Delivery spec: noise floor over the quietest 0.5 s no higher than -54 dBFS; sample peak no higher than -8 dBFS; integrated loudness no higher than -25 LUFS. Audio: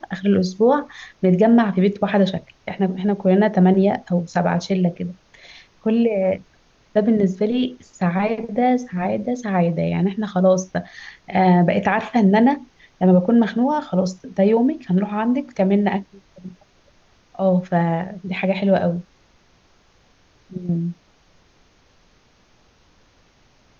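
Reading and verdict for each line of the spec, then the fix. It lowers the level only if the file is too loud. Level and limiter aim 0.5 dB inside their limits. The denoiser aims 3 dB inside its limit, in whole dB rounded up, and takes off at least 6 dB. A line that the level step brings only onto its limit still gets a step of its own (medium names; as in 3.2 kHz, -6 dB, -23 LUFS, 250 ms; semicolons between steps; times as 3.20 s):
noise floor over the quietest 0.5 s -56 dBFS: pass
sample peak -6.0 dBFS: fail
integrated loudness -19.5 LUFS: fail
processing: trim -6 dB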